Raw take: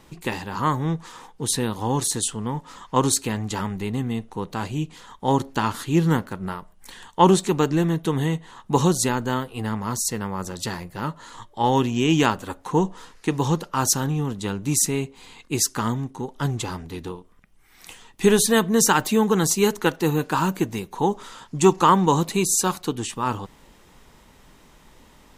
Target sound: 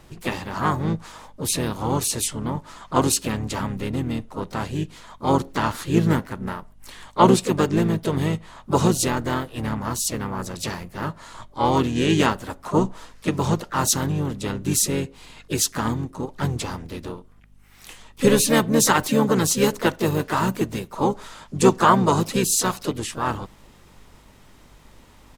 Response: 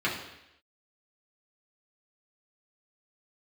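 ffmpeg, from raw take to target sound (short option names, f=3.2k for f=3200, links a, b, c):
-filter_complex "[0:a]asplit=4[a][b][c][d];[b]asetrate=29433,aresample=44100,atempo=1.49831,volume=-8dB[e];[c]asetrate=52444,aresample=44100,atempo=0.840896,volume=-10dB[f];[d]asetrate=58866,aresample=44100,atempo=0.749154,volume=-10dB[g];[a][e][f][g]amix=inputs=4:normalize=0,aeval=exprs='val(0)+0.00224*(sin(2*PI*50*n/s)+sin(2*PI*2*50*n/s)/2+sin(2*PI*3*50*n/s)/3+sin(2*PI*4*50*n/s)/4+sin(2*PI*5*50*n/s)/5)':c=same,volume=-1dB"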